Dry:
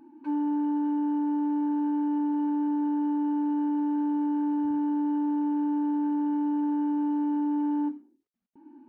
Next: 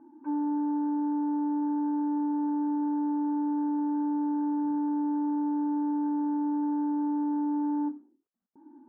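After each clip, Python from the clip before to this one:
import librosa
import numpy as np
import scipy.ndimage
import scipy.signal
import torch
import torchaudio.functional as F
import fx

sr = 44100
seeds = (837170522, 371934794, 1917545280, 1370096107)

y = scipy.signal.sosfilt(scipy.signal.butter(4, 1500.0, 'lowpass', fs=sr, output='sos'), x)
y = fx.low_shelf(y, sr, hz=120.0, db=-11.5)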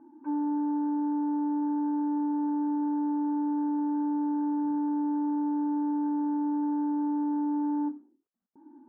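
y = x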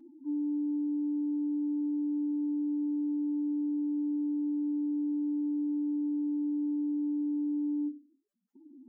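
y = fx.spec_expand(x, sr, power=3.4)
y = y + 0.49 * np.pad(y, (int(5.0 * sr / 1000.0), 0))[:len(y)]
y = F.gain(torch.from_numpy(y), 3.0).numpy()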